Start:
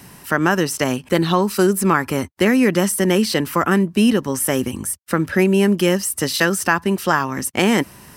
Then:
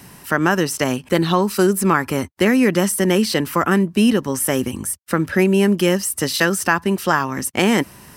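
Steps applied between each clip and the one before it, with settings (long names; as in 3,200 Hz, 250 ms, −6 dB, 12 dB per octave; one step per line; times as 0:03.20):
no processing that can be heard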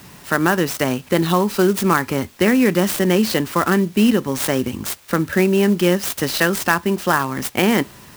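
in parallel at −9.5 dB: bit-depth reduction 6 bits, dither triangular
on the sum: convolution reverb, pre-delay 22 ms, DRR 19 dB
converter with an unsteady clock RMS 0.027 ms
level −2.5 dB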